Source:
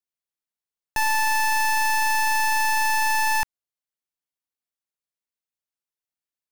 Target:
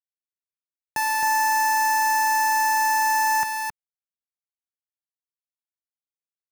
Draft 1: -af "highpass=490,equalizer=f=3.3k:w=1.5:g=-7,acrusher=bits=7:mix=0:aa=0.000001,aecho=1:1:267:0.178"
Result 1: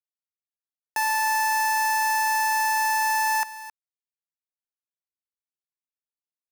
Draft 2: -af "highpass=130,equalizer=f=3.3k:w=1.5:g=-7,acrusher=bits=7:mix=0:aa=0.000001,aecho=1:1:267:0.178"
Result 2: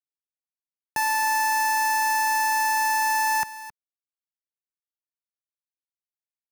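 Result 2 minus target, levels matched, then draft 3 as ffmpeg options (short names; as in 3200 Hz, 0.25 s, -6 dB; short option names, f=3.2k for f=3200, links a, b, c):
echo-to-direct -10.5 dB
-af "highpass=130,equalizer=f=3.3k:w=1.5:g=-7,acrusher=bits=7:mix=0:aa=0.000001,aecho=1:1:267:0.596"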